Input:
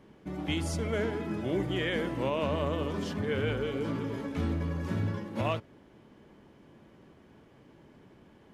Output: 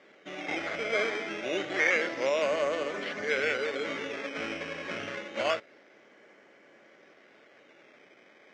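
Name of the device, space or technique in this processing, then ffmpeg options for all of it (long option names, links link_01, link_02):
circuit-bent sampling toy: -af "acrusher=samples=11:mix=1:aa=0.000001:lfo=1:lforange=11:lforate=0.27,highpass=530,equalizer=frequency=570:width_type=q:width=4:gain=4,equalizer=frequency=950:width_type=q:width=4:gain=-9,equalizer=frequency=1500:width_type=q:width=4:gain=4,equalizer=frequency=2100:width_type=q:width=4:gain=10,equalizer=frequency=4300:width_type=q:width=4:gain=-7,lowpass=frequency=5300:width=0.5412,lowpass=frequency=5300:width=1.3066,volume=4.5dB"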